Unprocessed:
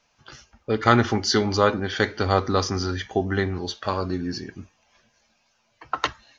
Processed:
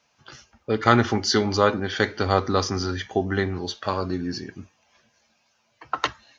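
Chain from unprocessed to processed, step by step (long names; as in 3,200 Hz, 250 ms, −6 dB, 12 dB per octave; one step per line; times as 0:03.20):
high-pass filter 72 Hz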